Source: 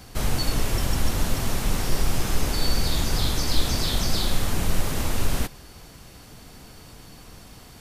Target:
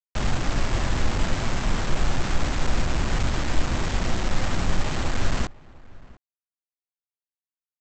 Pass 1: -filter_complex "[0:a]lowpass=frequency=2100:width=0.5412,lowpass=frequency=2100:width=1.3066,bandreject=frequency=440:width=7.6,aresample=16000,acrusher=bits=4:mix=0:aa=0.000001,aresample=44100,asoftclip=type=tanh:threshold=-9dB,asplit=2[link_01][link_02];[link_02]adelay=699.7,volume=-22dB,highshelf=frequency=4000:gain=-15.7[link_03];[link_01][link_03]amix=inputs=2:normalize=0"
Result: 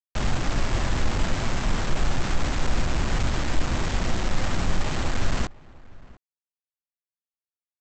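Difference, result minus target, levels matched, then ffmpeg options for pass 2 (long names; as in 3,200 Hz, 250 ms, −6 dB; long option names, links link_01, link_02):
soft clipping: distortion +17 dB
-filter_complex "[0:a]lowpass=frequency=2100:width=0.5412,lowpass=frequency=2100:width=1.3066,bandreject=frequency=440:width=7.6,aresample=16000,acrusher=bits=4:mix=0:aa=0.000001,aresample=44100,asoftclip=type=tanh:threshold=0dB,asplit=2[link_01][link_02];[link_02]adelay=699.7,volume=-22dB,highshelf=frequency=4000:gain=-15.7[link_03];[link_01][link_03]amix=inputs=2:normalize=0"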